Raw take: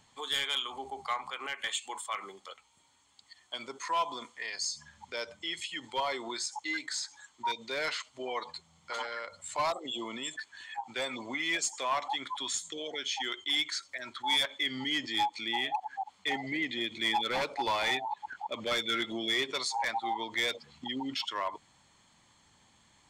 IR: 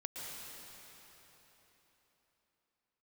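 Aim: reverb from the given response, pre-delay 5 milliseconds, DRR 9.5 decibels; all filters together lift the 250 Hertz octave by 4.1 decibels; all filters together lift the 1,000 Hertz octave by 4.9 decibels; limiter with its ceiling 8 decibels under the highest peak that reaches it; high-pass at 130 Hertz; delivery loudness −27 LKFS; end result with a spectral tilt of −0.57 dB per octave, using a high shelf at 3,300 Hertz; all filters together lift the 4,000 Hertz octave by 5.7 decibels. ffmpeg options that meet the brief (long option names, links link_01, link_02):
-filter_complex "[0:a]highpass=130,equalizer=frequency=250:width_type=o:gain=5,equalizer=frequency=1000:width_type=o:gain=5,highshelf=frequency=3300:gain=3.5,equalizer=frequency=4000:width_type=o:gain=4.5,alimiter=limit=-21dB:level=0:latency=1,asplit=2[link_01][link_02];[1:a]atrim=start_sample=2205,adelay=5[link_03];[link_02][link_03]afir=irnorm=-1:irlink=0,volume=-9.5dB[link_04];[link_01][link_04]amix=inputs=2:normalize=0,volume=3.5dB"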